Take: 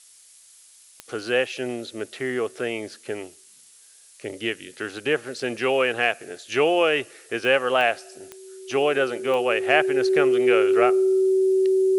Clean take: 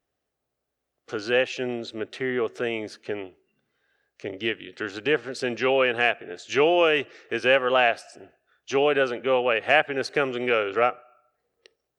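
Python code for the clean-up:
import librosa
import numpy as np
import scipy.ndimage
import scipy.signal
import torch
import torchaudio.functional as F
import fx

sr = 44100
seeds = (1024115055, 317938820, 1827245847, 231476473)

y = fx.fix_declick_ar(x, sr, threshold=10.0)
y = fx.notch(y, sr, hz=380.0, q=30.0)
y = fx.noise_reduce(y, sr, print_start_s=3.53, print_end_s=4.03, reduce_db=29.0)
y = fx.fix_level(y, sr, at_s=11.54, step_db=-6.5)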